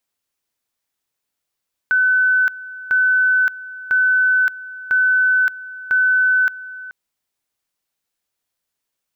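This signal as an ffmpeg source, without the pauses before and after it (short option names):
-f lavfi -i "aevalsrc='pow(10,(-12-18*gte(mod(t,1),0.57))/20)*sin(2*PI*1510*t)':d=5:s=44100"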